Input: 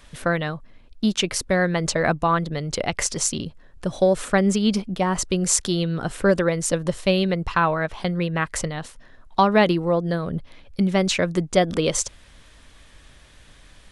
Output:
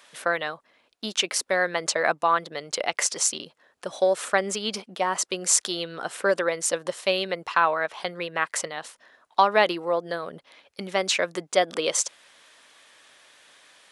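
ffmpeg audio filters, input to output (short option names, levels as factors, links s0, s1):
-af "highpass=530"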